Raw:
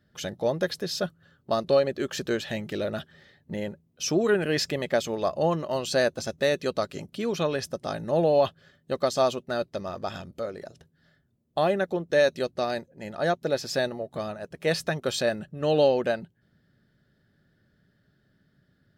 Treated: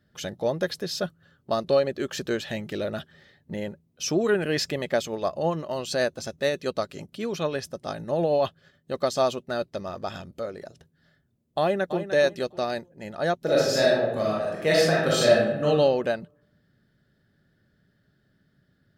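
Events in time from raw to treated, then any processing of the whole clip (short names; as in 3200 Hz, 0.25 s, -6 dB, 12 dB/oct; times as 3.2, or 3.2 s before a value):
5.04–8.94 tremolo 9.1 Hz, depth 33%
11.6–12.13 echo throw 0.3 s, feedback 25%, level -10 dB
13.37–15.65 reverb throw, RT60 0.96 s, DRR -5.5 dB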